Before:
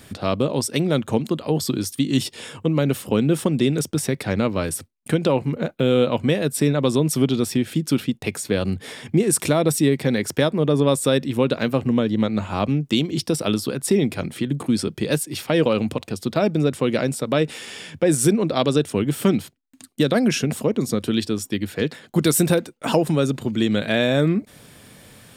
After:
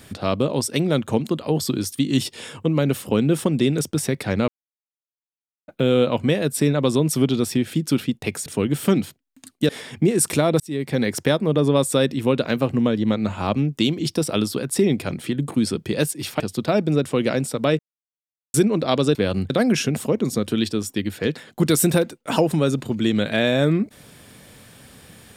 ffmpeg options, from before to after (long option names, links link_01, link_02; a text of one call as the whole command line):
ffmpeg -i in.wav -filter_complex "[0:a]asplit=11[link_01][link_02][link_03][link_04][link_05][link_06][link_07][link_08][link_09][link_10][link_11];[link_01]atrim=end=4.48,asetpts=PTS-STARTPTS,afade=type=out:start_time=4.476:duration=0.004:curve=hsin[link_12];[link_02]atrim=start=4.48:end=5.68,asetpts=PTS-STARTPTS,volume=0[link_13];[link_03]atrim=start=5.68:end=8.462,asetpts=PTS-STARTPTS,afade=type=in:duration=0.004:curve=hsin[link_14];[link_04]atrim=start=18.828:end=20.062[link_15];[link_05]atrim=start=8.808:end=9.72,asetpts=PTS-STARTPTS,afade=type=out:start_time=0.908:duration=0.004:curve=hsin[link_16];[link_06]atrim=start=9.72:end=15.522,asetpts=PTS-STARTPTS,afade=type=in:duration=0.41[link_17];[link_07]atrim=start=16.078:end=17.47,asetpts=PTS-STARTPTS,afade=type=out:start_time=1.388:duration=0.004:curve=hsin[link_18];[link_08]atrim=start=17.47:end=18.22,asetpts=PTS-STARTPTS,volume=0[link_19];[link_09]atrim=start=18.22:end=18.832,asetpts=PTS-STARTPTS,afade=type=in:duration=0.004:curve=hsin[link_20];[link_10]atrim=start=8.458:end=8.812[link_21];[link_11]atrim=start=20.058[link_22];[link_12][link_13][link_14]concat=n=3:v=0:a=1[link_23];[link_23][link_15]acrossfade=duration=0.004:curve1=hsin:curve2=hsin[link_24];[link_16][link_17]concat=n=2:v=0:a=1[link_25];[link_24][link_25]acrossfade=duration=0.004:curve1=hsin:curve2=hsin[link_26];[link_18][link_19][link_20]concat=n=3:v=0:a=1[link_27];[link_26][link_27]acrossfade=duration=0.004:curve1=hsin:curve2=hsin[link_28];[link_28][link_21]acrossfade=duration=0.004:curve1=hsin:curve2=hsin[link_29];[link_29][link_22]acrossfade=duration=0.004:curve1=hsin:curve2=hsin" out.wav